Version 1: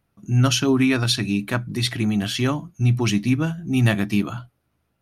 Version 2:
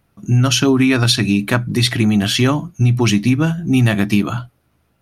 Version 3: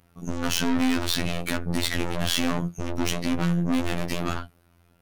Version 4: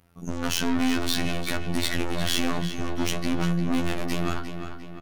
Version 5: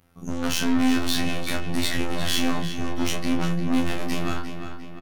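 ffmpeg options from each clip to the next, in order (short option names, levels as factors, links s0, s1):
-af "acompressor=threshold=0.112:ratio=6,volume=2.82"
-af "alimiter=limit=0.447:level=0:latency=1,aeval=exprs='(tanh(20*val(0)+0.45)-tanh(0.45))/20':c=same,afftfilt=real='hypot(re,im)*cos(PI*b)':imag='0':win_size=2048:overlap=0.75,volume=2"
-filter_complex "[0:a]asplit=2[s0][s1];[s1]adelay=351,lowpass=f=4600:p=1,volume=0.376,asplit=2[s2][s3];[s3]adelay=351,lowpass=f=4600:p=1,volume=0.51,asplit=2[s4][s5];[s5]adelay=351,lowpass=f=4600:p=1,volume=0.51,asplit=2[s6][s7];[s7]adelay=351,lowpass=f=4600:p=1,volume=0.51,asplit=2[s8][s9];[s9]adelay=351,lowpass=f=4600:p=1,volume=0.51,asplit=2[s10][s11];[s11]adelay=351,lowpass=f=4600:p=1,volume=0.51[s12];[s0][s2][s4][s6][s8][s10][s12]amix=inputs=7:normalize=0,volume=0.891"
-filter_complex "[0:a]asplit=2[s0][s1];[s1]adelay=31,volume=0.562[s2];[s0][s2]amix=inputs=2:normalize=0" -ar 48000 -c:a aac -b:a 192k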